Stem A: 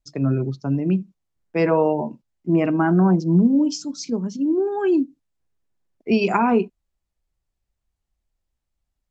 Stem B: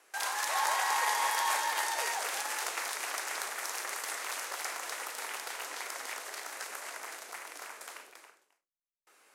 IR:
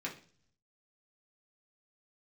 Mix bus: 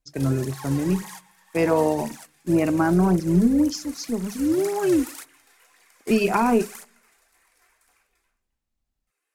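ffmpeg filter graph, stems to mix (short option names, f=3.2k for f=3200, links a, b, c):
-filter_complex "[0:a]tremolo=f=220:d=0.333,volume=-0.5dB,asplit=3[a][b][c];[b]volume=-19dB[d];[1:a]highshelf=f=5.3k:g=10,aphaser=in_gain=1:out_gain=1:delay=3:decay=0.68:speed=1.9:type=triangular,volume=-6.5dB,afade=t=in:st=4.11:d=0.76:silence=0.354813,asplit=2[e][f];[f]volume=-18dB[g];[c]apad=whole_len=412111[h];[e][h]sidechaingate=range=-33dB:threshold=-47dB:ratio=16:detection=peak[i];[2:a]atrim=start_sample=2205[j];[d][g]amix=inputs=2:normalize=0[k];[k][j]afir=irnorm=-1:irlink=0[l];[a][i][l]amix=inputs=3:normalize=0"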